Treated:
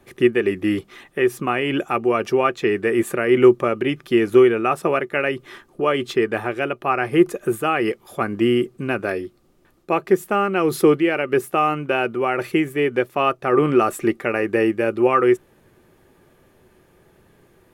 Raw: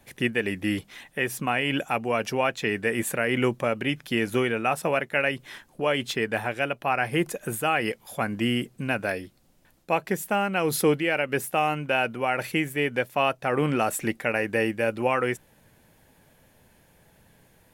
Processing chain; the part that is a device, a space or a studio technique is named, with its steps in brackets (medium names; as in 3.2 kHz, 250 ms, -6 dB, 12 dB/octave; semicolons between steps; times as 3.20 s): inside a helmet (treble shelf 4 kHz -6 dB; small resonant body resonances 370/1200 Hz, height 14 dB, ringing for 50 ms); trim +2 dB